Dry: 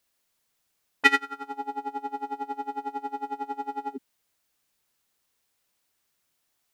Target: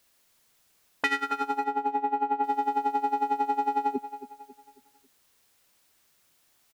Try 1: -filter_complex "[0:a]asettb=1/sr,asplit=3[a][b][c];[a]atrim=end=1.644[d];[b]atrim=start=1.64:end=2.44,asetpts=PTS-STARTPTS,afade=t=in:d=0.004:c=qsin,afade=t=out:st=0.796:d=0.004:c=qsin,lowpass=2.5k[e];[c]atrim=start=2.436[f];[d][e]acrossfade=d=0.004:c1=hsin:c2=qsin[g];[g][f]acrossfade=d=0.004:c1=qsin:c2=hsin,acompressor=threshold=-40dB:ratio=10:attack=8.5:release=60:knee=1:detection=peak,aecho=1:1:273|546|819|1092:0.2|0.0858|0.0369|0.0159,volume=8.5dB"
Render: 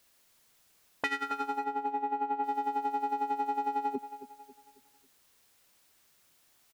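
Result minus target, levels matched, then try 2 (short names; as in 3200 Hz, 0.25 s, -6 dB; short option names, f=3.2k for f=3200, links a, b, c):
compressor: peak gain reduction +6 dB
-filter_complex "[0:a]asettb=1/sr,asplit=3[a][b][c];[a]atrim=end=1.644[d];[b]atrim=start=1.64:end=2.44,asetpts=PTS-STARTPTS,afade=t=in:d=0.004:c=qsin,afade=t=out:st=0.796:d=0.004:c=qsin,lowpass=2.5k[e];[c]atrim=start=2.436[f];[d][e]acrossfade=d=0.004:c1=hsin:c2=qsin[g];[g][f]acrossfade=d=0.004:c1=qsin:c2=hsin,acompressor=threshold=-33.5dB:ratio=10:attack=8.5:release=60:knee=1:detection=peak,aecho=1:1:273|546|819|1092:0.2|0.0858|0.0369|0.0159,volume=8.5dB"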